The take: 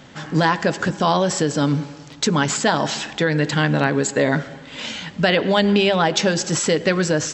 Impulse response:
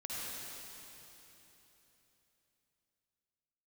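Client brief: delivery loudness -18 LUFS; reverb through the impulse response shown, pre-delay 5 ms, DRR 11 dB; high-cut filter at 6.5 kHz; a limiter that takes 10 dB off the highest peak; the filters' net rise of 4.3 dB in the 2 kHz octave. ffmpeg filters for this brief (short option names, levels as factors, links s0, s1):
-filter_complex "[0:a]lowpass=6500,equalizer=f=2000:t=o:g=5.5,alimiter=limit=0.299:level=0:latency=1,asplit=2[s0][s1];[1:a]atrim=start_sample=2205,adelay=5[s2];[s1][s2]afir=irnorm=-1:irlink=0,volume=0.224[s3];[s0][s3]amix=inputs=2:normalize=0,volume=1.5"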